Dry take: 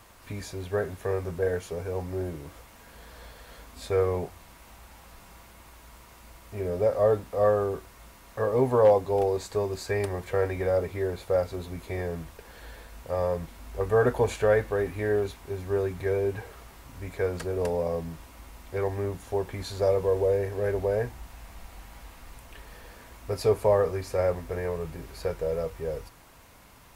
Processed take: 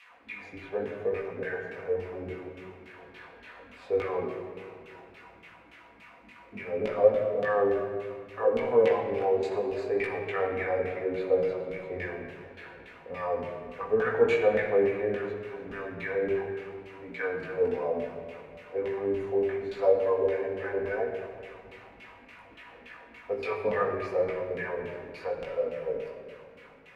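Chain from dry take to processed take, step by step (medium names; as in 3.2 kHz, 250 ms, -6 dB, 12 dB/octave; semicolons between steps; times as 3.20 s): peaking EQ 2.4 kHz +8.5 dB 1.1 oct; LFO band-pass saw down 3.5 Hz 200–2800 Hz; chorus 0.7 Hz, delay 17 ms, depth 3.8 ms; simulated room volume 3500 m³, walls mixed, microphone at 1.9 m; trim +5.5 dB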